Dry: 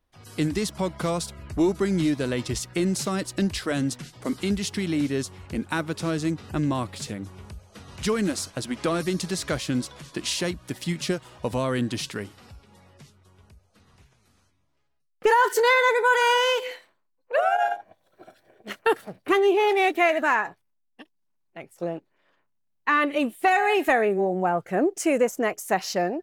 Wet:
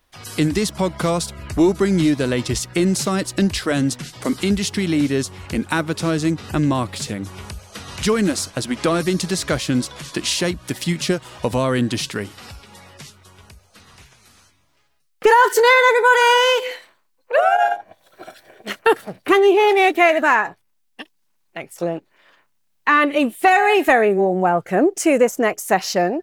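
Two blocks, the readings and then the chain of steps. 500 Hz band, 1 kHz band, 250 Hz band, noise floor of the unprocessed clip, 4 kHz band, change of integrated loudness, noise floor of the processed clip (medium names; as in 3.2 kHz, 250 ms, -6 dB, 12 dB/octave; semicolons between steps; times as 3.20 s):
+6.5 dB, +6.5 dB, +6.5 dB, -72 dBFS, +6.5 dB, +6.5 dB, -65 dBFS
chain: tape noise reduction on one side only encoder only; trim +6.5 dB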